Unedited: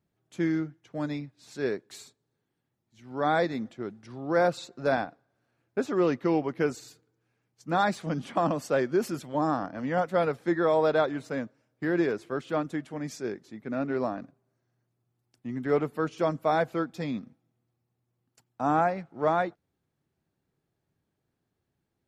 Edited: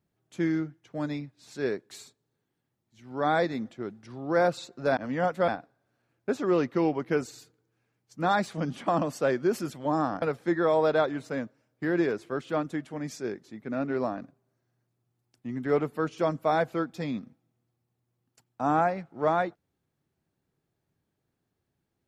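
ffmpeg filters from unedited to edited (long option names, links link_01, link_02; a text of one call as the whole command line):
ffmpeg -i in.wav -filter_complex "[0:a]asplit=4[link_01][link_02][link_03][link_04];[link_01]atrim=end=4.972[link_05];[link_02]atrim=start=9.708:end=10.222[link_06];[link_03]atrim=start=4.968:end=9.712[link_07];[link_04]atrim=start=10.218[link_08];[link_05][link_06]acrossfade=duration=0.004:curve1=hsin:curve2=hsin[link_09];[link_09][link_07]acrossfade=duration=0.004:curve1=hsin:curve2=hsin[link_10];[link_10][link_08]acrossfade=duration=0.004:curve1=hsin:curve2=hsin" out.wav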